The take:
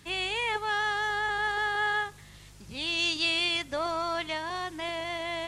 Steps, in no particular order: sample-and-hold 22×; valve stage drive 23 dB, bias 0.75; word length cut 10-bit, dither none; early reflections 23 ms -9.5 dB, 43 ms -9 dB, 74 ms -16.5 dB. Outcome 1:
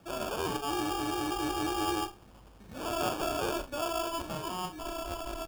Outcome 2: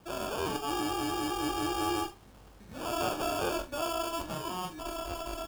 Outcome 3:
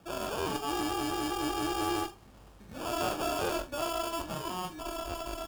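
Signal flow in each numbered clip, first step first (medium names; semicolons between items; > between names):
word length cut > valve stage > early reflections > sample-and-hold; sample-and-hold > valve stage > early reflections > word length cut; sample-and-hold > early reflections > word length cut > valve stage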